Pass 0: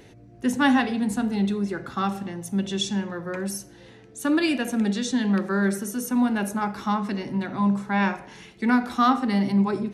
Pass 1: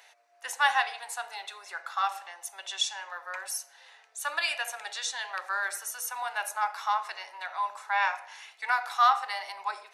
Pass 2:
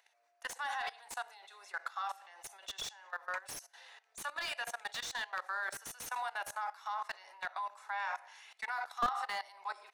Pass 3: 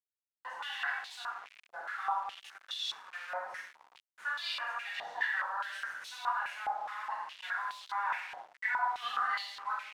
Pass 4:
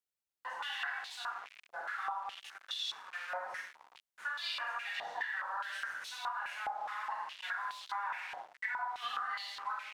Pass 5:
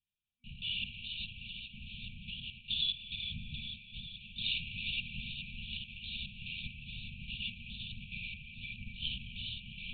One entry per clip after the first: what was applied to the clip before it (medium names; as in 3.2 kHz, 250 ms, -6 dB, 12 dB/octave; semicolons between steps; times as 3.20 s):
steep high-pass 710 Hz 36 dB/octave; band-stop 3.2 kHz, Q 28
dynamic bell 2.5 kHz, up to -5 dB, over -49 dBFS, Q 3.9; level held to a coarse grid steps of 19 dB; slew-rate limiter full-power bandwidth 47 Hz; trim +1 dB
simulated room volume 420 m³, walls mixed, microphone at 4.9 m; bit crusher 6-bit; step-sequenced band-pass 4.8 Hz 740–3800 Hz
compression 10:1, threshold -35 dBFS, peak gain reduction 9 dB; trim +1 dB
echo whose repeats swap between lows and highs 208 ms, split 2.5 kHz, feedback 83%, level -6 dB; LPC vocoder at 8 kHz whisper; FFT band-reject 240–2300 Hz; trim +6.5 dB